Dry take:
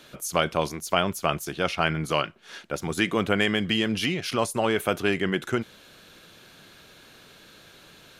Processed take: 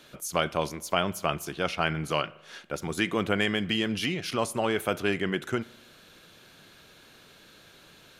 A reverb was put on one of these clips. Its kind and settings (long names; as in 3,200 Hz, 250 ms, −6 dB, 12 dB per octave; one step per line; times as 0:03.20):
spring reverb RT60 1 s, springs 39 ms, DRR 19.5 dB
level −3 dB